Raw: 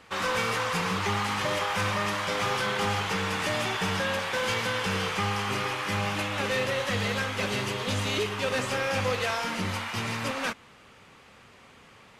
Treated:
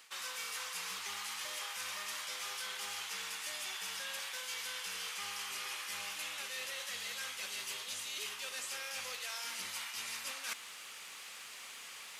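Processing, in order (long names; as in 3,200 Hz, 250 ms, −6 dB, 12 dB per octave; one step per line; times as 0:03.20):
first difference
reversed playback
downward compressor 12 to 1, threshold −54 dBFS, peak gain reduction 21 dB
reversed playback
level +15 dB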